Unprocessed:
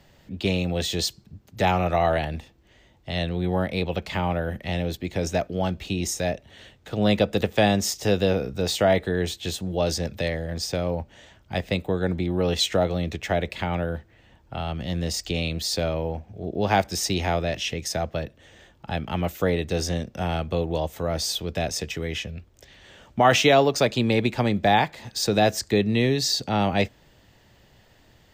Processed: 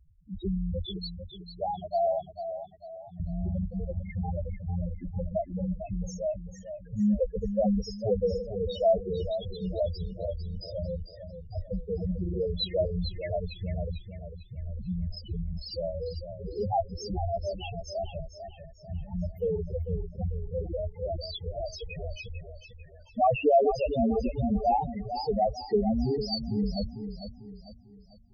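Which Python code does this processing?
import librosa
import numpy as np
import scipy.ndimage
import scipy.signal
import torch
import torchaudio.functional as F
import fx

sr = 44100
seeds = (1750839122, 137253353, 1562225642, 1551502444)

y = fx.octave_divider(x, sr, octaves=2, level_db=-3.0)
y = fx.high_shelf(y, sr, hz=5700.0, db=-3.5)
y = fx.spec_topn(y, sr, count=2)
y = fx.highpass(y, sr, hz=260.0, slope=12, at=(0.86, 3.2))
y = fx.echo_warbled(y, sr, ms=447, feedback_pct=41, rate_hz=2.8, cents=56, wet_db=-9.5)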